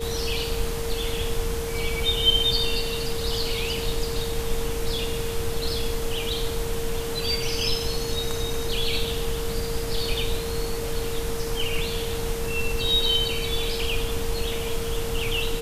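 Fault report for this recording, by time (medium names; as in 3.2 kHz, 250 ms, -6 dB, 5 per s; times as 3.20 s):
whine 460 Hz -30 dBFS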